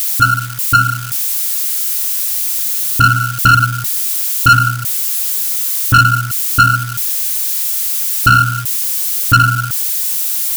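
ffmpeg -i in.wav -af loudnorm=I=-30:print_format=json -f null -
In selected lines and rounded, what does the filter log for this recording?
"input_i" : "-12.5",
"input_tp" : "-2.7",
"input_lra" : "1.2",
"input_thresh" : "-22.5",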